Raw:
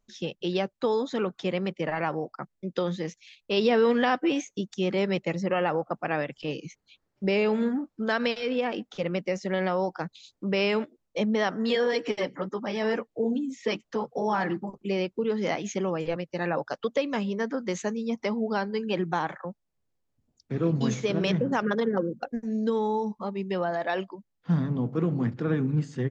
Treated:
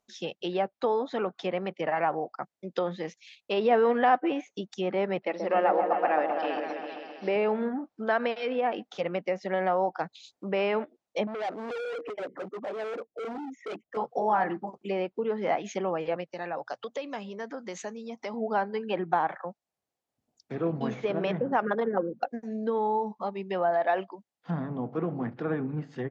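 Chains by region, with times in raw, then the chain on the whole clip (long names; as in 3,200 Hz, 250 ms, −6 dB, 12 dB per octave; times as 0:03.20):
0:05.22–0:07.36: log-companded quantiser 6 bits + linear-phase brick-wall band-pass 190–5,900 Hz + echo whose low-pass opens from repeat to repeat 131 ms, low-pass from 750 Hz, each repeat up 1 octave, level −3 dB
0:11.27–0:13.97: spectral envelope exaggerated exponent 2 + moving average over 10 samples + gain into a clipping stage and back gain 32 dB
0:16.33–0:18.34: downward compressor 2 to 1, threshold −36 dBFS + mains-hum notches 60/120 Hz
whole clip: treble cut that deepens with the level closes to 2,000 Hz, closed at −23.5 dBFS; high-pass filter 370 Hz 6 dB per octave; parametric band 730 Hz +7 dB 0.5 octaves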